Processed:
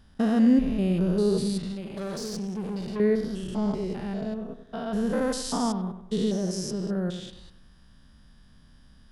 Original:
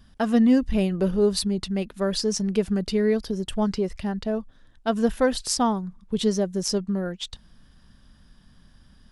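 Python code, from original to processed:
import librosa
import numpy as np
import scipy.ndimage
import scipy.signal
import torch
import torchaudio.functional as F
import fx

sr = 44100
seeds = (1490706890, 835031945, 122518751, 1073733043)

y = fx.spec_steps(x, sr, hold_ms=200)
y = fx.tube_stage(y, sr, drive_db=29.0, bias=0.45, at=(1.72, 3.0))
y = fx.echo_bbd(y, sr, ms=96, stages=2048, feedback_pct=41, wet_db=-10.5)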